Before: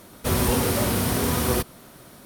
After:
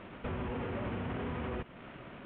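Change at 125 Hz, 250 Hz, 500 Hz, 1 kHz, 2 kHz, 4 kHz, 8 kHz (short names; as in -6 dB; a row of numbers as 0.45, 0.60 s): -14.0 dB, -13.5 dB, -13.5 dB, -13.5 dB, -13.0 dB, -22.0 dB, under -40 dB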